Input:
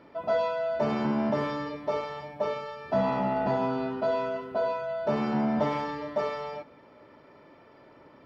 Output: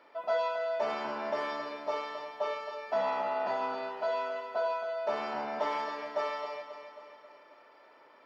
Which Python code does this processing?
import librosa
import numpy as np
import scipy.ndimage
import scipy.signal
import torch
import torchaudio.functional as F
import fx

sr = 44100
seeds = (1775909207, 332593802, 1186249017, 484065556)

y = scipy.signal.sosfilt(scipy.signal.butter(2, 630.0, 'highpass', fs=sr, output='sos'), x)
y = fx.echo_feedback(y, sr, ms=270, feedback_pct=53, wet_db=-10)
y = y * librosa.db_to_amplitude(-1.0)